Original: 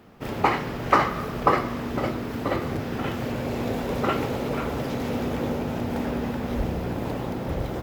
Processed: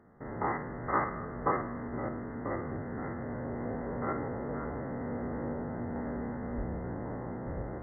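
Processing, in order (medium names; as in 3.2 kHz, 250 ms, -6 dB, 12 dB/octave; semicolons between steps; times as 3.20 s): spectrogram pixelated in time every 50 ms; brick-wall FIR low-pass 2.1 kHz; trim -7.5 dB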